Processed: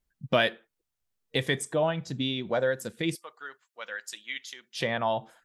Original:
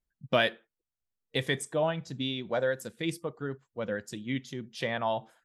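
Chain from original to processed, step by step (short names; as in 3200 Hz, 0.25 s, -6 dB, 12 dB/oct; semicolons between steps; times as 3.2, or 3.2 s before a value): 3.15–4.76 HPF 1400 Hz 12 dB/oct; in parallel at 0 dB: compressor, threshold -37 dBFS, peak gain reduction 16 dB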